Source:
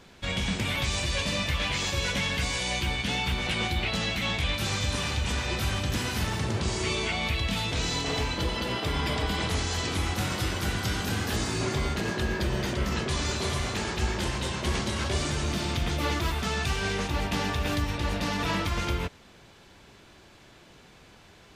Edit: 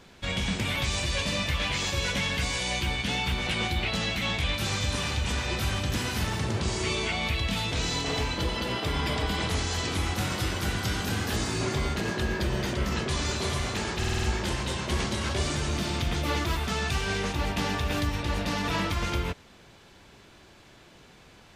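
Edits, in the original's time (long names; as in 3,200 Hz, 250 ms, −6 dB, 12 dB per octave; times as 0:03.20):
0:13.98: stutter 0.05 s, 6 plays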